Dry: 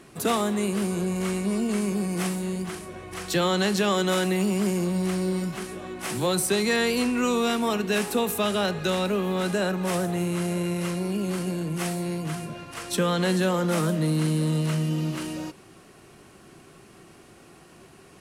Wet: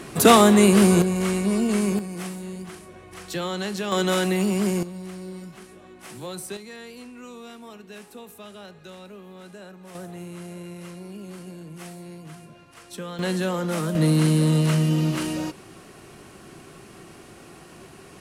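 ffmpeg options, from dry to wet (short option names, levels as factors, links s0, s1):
-af "asetnsamples=n=441:p=0,asendcmd='1.02 volume volume 3.5dB;1.99 volume volume -5.5dB;3.92 volume volume 1.5dB;4.83 volume volume -10.5dB;6.57 volume volume -17.5dB;9.95 volume volume -11dB;13.19 volume volume -2dB;13.95 volume volume 5dB',volume=3.55"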